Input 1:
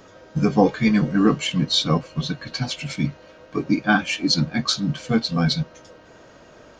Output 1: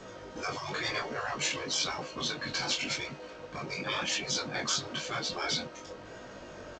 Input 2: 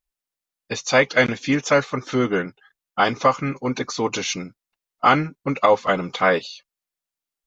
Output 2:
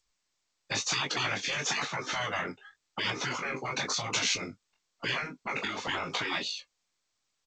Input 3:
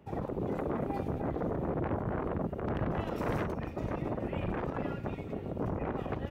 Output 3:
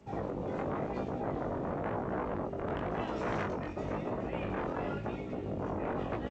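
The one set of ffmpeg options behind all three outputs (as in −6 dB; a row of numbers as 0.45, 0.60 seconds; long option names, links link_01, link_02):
-filter_complex "[0:a]acrossover=split=180|2200[link_01][link_02][link_03];[link_01]acompressor=threshold=-43dB:ratio=6[link_04];[link_04][link_02][link_03]amix=inputs=3:normalize=0,asplit=2[link_05][link_06];[link_06]adelay=20,volume=-7.5dB[link_07];[link_05][link_07]amix=inputs=2:normalize=0,asplit=2[link_08][link_09];[link_09]alimiter=limit=-11dB:level=0:latency=1:release=108,volume=-2dB[link_10];[link_08][link_10]amix=inputs=2:normalize=0,flanger=delay=15.5:depth=7.8:speed=0.95,afftfilt=real='re*lt(hypot(re,im),0.178)':imag='im*lt(hypot(re,im),0.178)':win_size=1024:overlap=0.75,volume=-1.5dB" -ar 16000 -c:a g722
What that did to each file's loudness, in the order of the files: −11.0, −10.5, −1.0 LU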